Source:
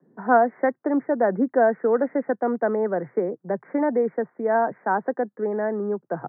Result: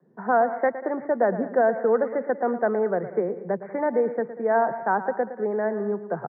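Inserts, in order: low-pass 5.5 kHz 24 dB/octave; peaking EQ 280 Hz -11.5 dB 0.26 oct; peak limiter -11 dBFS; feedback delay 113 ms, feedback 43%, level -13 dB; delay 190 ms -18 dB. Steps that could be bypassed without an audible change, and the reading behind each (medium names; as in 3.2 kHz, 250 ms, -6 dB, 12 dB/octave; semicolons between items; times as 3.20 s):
low-pass 5.5 kHz: input has nothing above 1.9 kHz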